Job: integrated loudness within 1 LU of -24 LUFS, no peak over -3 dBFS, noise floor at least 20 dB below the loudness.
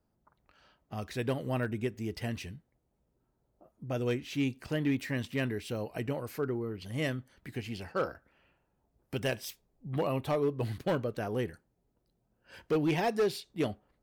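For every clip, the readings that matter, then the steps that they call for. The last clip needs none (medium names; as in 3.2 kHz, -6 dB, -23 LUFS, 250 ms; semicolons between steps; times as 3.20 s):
clipped samples 0.6%; clipping level -23.0 dBFS; loudness -34.0 LUFS; peak level -23.0 dBFS; loudness target -24.0 LUFS
-> clip repair -23 dBFS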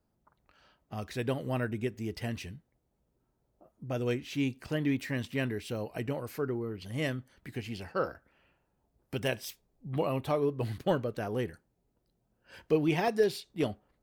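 clipped samples 0.0%; loudness -33.5 LUFS; peak level -15.0 dBFS; loudness target -24.0 LUFS
-> trim +9.5 dB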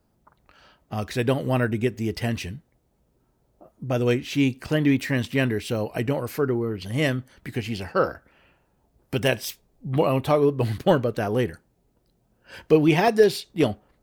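loudness -24.0 LUFS; peak level -5.5 dBFS; noise floor -68 dBFS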